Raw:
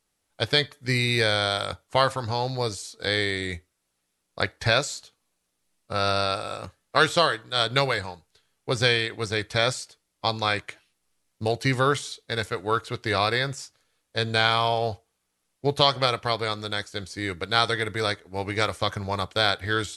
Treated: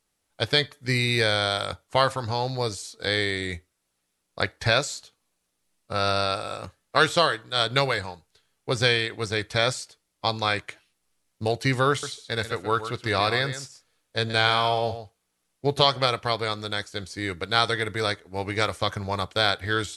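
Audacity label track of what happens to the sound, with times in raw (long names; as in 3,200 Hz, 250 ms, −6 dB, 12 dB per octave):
11.900000	15.900000	single-tap delay 127 ms −11 dB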